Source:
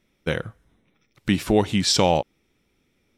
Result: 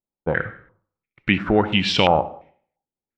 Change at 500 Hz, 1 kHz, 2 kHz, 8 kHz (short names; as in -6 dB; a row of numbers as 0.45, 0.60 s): +1.5, +4.0, +7.5, -13.5 dB